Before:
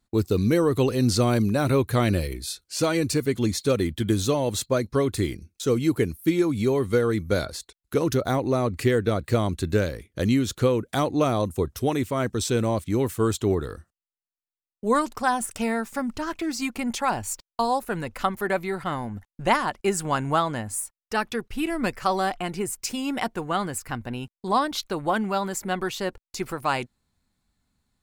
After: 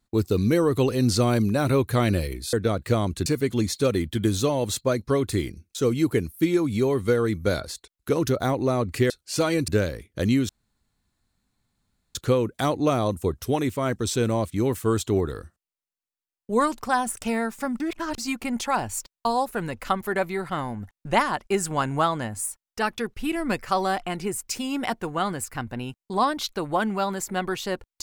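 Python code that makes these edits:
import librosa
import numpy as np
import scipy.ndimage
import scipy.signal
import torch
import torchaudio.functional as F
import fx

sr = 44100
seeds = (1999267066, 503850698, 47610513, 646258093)

y = fx.edit(x, sr, fx.swap(start_s=2.53, length_s=0.58, other_s=8.95, other_length_s=0.73),
    fx.insert_room_tone(at_s=10.49, length_s=1.66),
    fx.reverse_span(start_s=16.14, length_s=0.38), tone=tone)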